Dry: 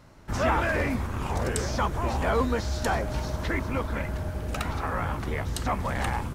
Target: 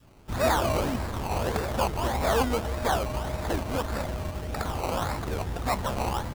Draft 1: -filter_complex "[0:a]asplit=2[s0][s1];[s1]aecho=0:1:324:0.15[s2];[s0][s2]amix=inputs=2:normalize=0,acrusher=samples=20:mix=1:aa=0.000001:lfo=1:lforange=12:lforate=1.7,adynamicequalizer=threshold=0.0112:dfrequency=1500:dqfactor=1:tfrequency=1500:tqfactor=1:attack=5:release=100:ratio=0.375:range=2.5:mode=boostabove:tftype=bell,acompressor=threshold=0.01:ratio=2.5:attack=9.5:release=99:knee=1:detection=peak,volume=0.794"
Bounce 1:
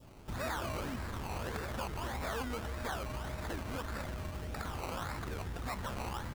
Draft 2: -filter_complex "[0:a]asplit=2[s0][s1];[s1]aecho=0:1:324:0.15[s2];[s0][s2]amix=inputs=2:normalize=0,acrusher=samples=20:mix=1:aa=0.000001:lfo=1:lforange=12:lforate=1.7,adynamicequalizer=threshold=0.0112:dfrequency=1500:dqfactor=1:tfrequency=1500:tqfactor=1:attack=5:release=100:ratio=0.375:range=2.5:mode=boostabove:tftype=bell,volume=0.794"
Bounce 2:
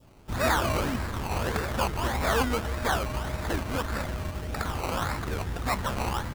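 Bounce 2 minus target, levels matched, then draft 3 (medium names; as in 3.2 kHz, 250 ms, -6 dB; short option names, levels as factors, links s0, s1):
2 kHz band +3.5 dB
-filter_complex "[0:a]asplit=2[s0][s1];[s1]aecho=0:1:324:0.15[s2];[s0][s2]amix=inputs=2:normalize=0,acrusher=samples=20:mix=1:aa=0.000001:lfo=1:lforange=12:lforate=1.7,adynamicequalizer=threshold=0.0112:dfrequency=710:dqfactor=1:tfrequency=710:tqfactor=1:attack=5:release=100:ratio=0.375:range=2.5:mode=boostabove:tftype=bell,volume=0.794"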